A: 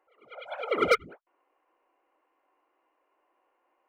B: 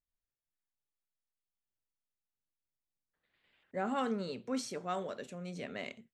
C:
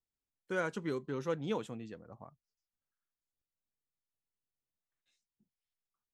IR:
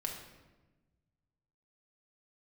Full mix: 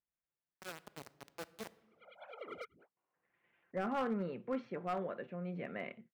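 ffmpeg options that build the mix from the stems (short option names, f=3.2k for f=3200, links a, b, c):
-filter_complex "[0:a]acompressor=threshold=-28dB:ratio=6,adelay=1700,volume=-16dB[a];[1:a]lowpass=f=2.3k:w=0.5412,lowpass=f=2.3k:w=1.3066,aecho=1:1:5.8:0.32,volume=-0.5dB[b];[2:a]equalizer=f=2.6k:w=0.48:g=-4,acrusher=bits=4:mix=0:aa=0.000001,adelay=100,volume=-14.5dB,asplit=2[c][d];[d]volume=-13dB[e];[3:a]atrim=start_sample=2205[f];[e][f]afir=irnorm=-1:irlink=0[g];[a][b][c][g]amix=inputs=4:normalize=0,highpass=85,volume=29.5dB,asoftclip=hard,volume=-29.5dB"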